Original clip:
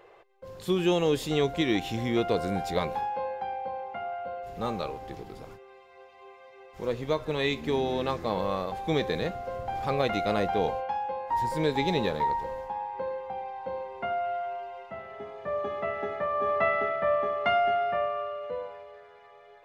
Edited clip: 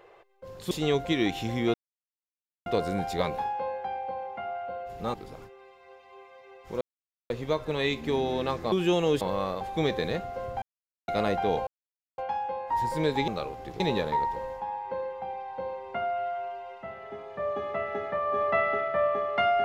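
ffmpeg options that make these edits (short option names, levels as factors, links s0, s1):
-filter_complex "[0:a]asplit=12[s0][s1][s2][s3][s4][s5][s6][s7][s8][s9][s10][s11];[s0]atrim=end=0.712[s12];[s1]atrim=start=1.198:end=2.23,asetpts=PTS-STARTPTS,afade=t=out:st=1.028:d=0.004:c=hsin,apad=pad_dur=0.92[s13];[s2]atrim=start=2.23:end=4.712,asetpts=PTS-STARTPTS,afade=t=in:d=0.004:c=hsin[s14];[s3]atrim=start=5.228:end=6.9,asetpts=PTS-STARTPTS,afade=t=out:st=1.668:d=0.004:c=hsin,apad=pad_dur=0.49[s15];[s4]atrim=start=6.9:end=8.322,asetpts=PTS-STARTPTS,afade=t=in:d=0.004:c=hsin[s16];[s5]atrim=start=0.708:end=1.202[s17];[s6]atrim=start=8.318:end=9.73,asetpts=PTS-STARTPTS,afade=t=out:st=1.408:d=0.004:c=hsin[s18];[s7]atrim=start=9.73:end=10.19,asetpts=PTS-STARTPTS,volume=0[s19];[s8]atrim=start=10.19:end=10.78,asetpts=PTS-STARTPTS,afade=t=in:d=0.004:c=hsin,afade=t=out:st=0.586:d=0.004:c=hsin,apad=pad_dur=0.51[s20];[s9]atrim=start=10.78:end=11.882,asetpts=PTS-STARTPTS,afade=t=in:d=0.004:c=hsin[s21];[s10]atrim=start=4.708:end=5.232[s22];[s11]atrim=start=11.878[s23];[s13][s14]concat=n=2:v=0:a=1[s24];[s12][s24]acrossfade=d=0.004:c1=hsin:c2=hsin[s25];[s15][s16]concat=n=2:v=0:a=1[s26];[s25][s26]acrossfade=d=0.004:c1=hsin:c2=hsin[s27];[s27][s17]acrossfade=d=0.004:c1=hsin:c2=hsin[s28];[s18][s19][s20][s21]concat=n=4:v=0:a=1[s29];[s28][s29]acrossfade=d=0.004:c1=hsin:c2=hsin[s30];[s30][s22]acrossfade=d=0.004:c1=hsin:c2=hsin[s31];[s31][s23]acrossfade=d=0.004:c1=hsin:c2=hsin"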